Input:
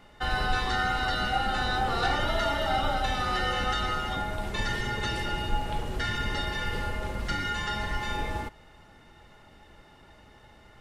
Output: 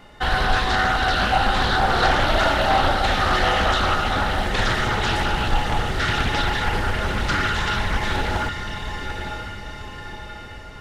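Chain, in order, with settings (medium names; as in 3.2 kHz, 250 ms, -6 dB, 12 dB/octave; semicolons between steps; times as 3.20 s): echo that smears into a reverb 973 ms, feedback 51%, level -7 dB; loudspeaker Doppler distortion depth 0.5 ms; trim +7.5 dB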